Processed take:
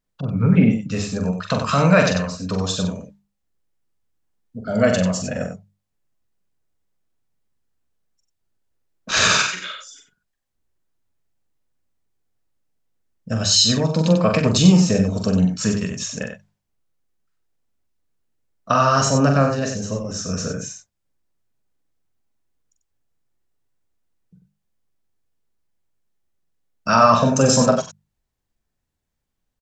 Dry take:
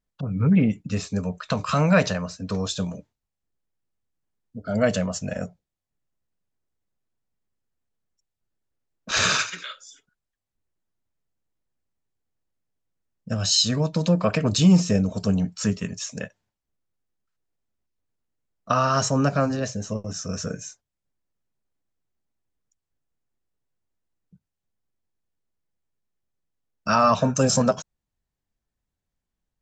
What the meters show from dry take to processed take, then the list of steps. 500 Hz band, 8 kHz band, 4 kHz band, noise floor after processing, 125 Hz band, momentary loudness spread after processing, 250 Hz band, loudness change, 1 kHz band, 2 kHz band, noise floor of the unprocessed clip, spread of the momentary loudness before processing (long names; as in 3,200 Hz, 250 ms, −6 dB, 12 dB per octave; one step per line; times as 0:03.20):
+5.0 dB, +5.0 dB, +5.0 dB, −77 dBFS, +4.0 dB, 14 LU, +4.0 dB, +4.5 dB, +5.0 dB, +5.0 dB, −85 dBFS, 14 LU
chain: mains-hum notches 50/100/150/200 Hz
loudspeakers that aren't time-aligned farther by 15 metres −6 dB, 32 metres −7 dB
level +3.5 dB